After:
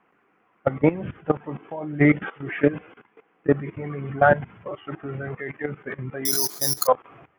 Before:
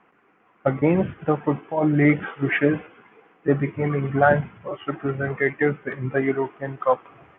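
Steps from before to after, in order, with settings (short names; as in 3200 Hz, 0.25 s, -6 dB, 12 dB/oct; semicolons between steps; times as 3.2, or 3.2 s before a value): level quantiser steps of 17 dB; 6.25–6.87 careless resampling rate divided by 8×, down filtered, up zero stuff; gain +3 dB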